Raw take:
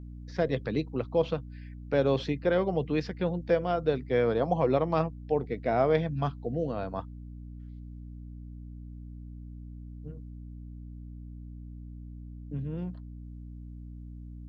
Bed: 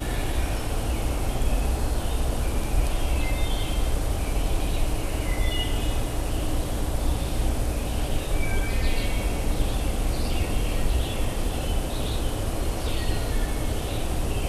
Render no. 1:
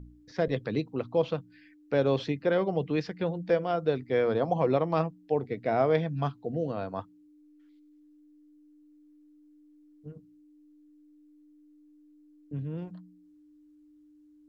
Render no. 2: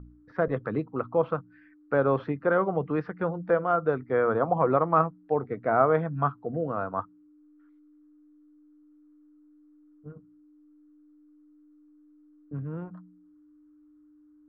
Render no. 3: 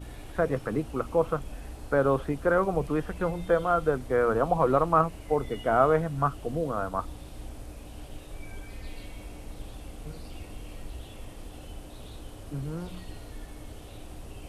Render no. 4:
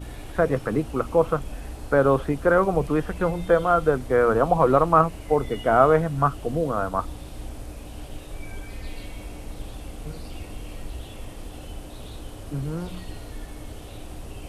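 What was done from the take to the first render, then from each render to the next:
de-hum 60 Hz, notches 4
resonant low-pass 1.3 kHz, resonance Q 4.6
add bed -16.5 dB
trim +5 dB

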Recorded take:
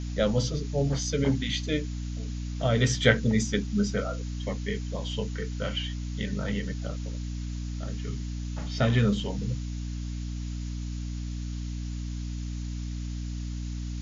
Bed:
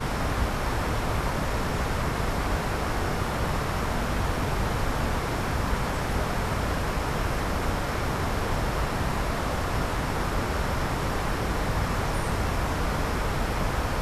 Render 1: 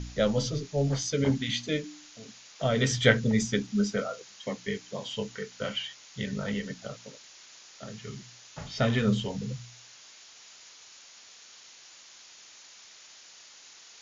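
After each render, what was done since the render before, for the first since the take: de-hum 60 Hz, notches 5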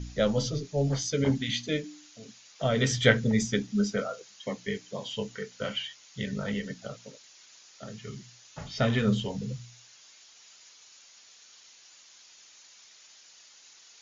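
noise reduction 6 dB, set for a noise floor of -52 dBFS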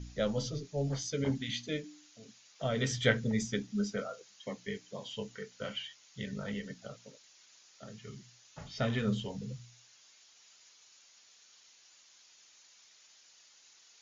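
trim -6.5 dB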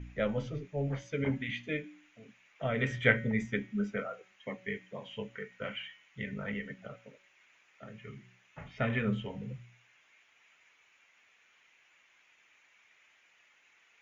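resonant high shelf 3.3 kHz -12.5 dB, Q 3; de-hum 187 Hz, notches 34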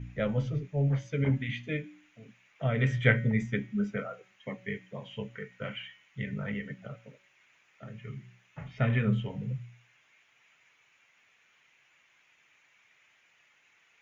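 peaking EQ 130 Hz +9 dB 0.89 oct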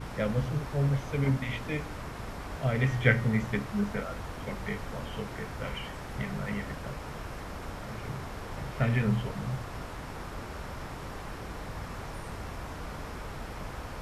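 add bed -12.5 dB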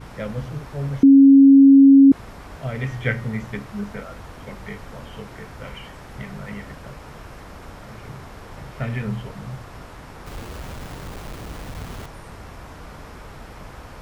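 1.03–2.12 s: bleep 274 Hz -6 dBFS; 10.26–12.06 s: square wave that keeps the level

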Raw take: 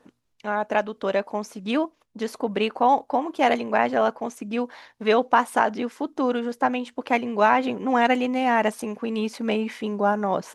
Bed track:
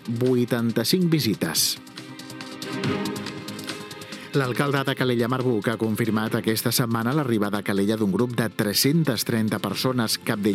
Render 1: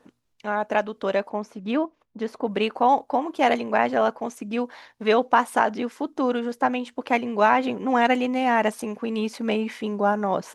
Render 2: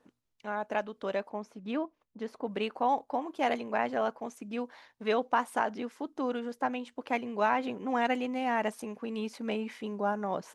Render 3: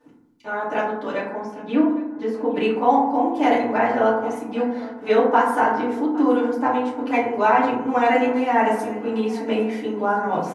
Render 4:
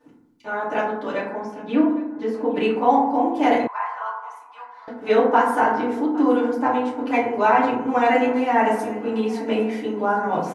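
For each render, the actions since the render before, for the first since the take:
1.29–2.45 s: low-pass 2 kHz 6 dB/octave
trim -9 dB
feedback delay 809 ms, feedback 47%, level -19.5 dB; FDN reverb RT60 0.85 s, low-frequency decay 1.4×, high-frequency decay 0.35×, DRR -9.5 dB
3.67–4.88 s: ladder high-pass 990 Hz, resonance 80%

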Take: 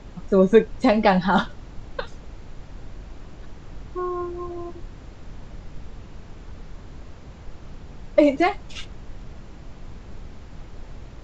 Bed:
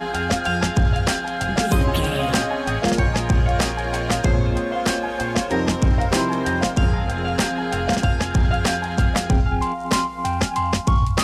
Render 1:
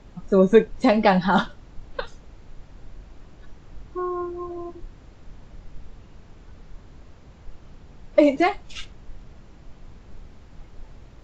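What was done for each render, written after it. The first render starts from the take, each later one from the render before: noise print and reduce 6 dB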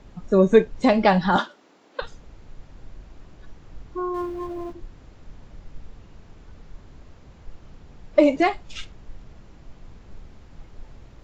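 1.36–2.02 s: high-pass 270 Hz 24 dB/octave; 4.14–4.73 s: companding laws mixed up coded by mu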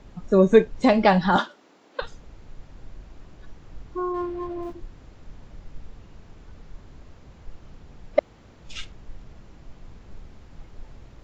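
4.12–4.63 s: distance through air 97 m; 8.19–8.64 s: room tone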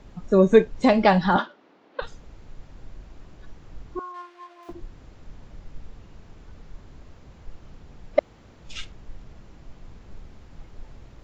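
1.33–2.02 s: distance through air 200 m; 3.99–4.69 s: high-pass 1.3 kHz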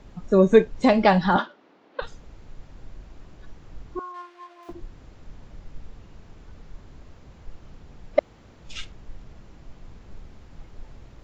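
no audible change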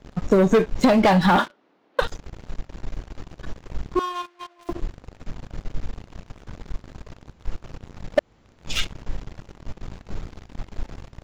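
waveshaping leveller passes 3; compression 6:1, threshold -14 dBFS, peak gain reduction 8 dB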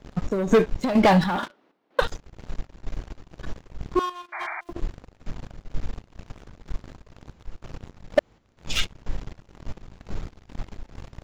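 square tremolo 2.1 Hz, depth 65%, duty 60%; 4.32–4.61 s: painted sound noise 610–2400 Hz -33 dBFS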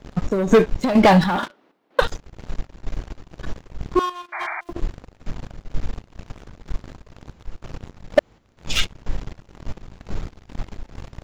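trim +4 dB

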